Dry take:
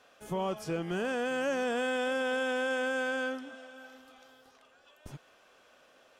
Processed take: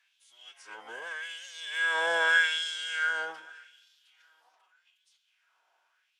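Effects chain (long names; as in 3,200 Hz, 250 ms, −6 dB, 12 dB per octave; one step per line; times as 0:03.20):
source passing by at 0:02.42, 8 m/s, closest 3.2 metres
phase-vocoder pitch shift with formants kept −8 semitones
auto-filter high-pass sine 0.83 Hz 800–3,900 Hz
level +6.5 dB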